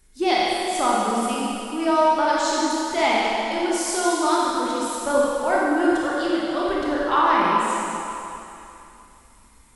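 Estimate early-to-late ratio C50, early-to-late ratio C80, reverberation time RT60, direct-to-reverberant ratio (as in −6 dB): −3.5 dB, −2.0 dB, 2.9 s, −6.0 dB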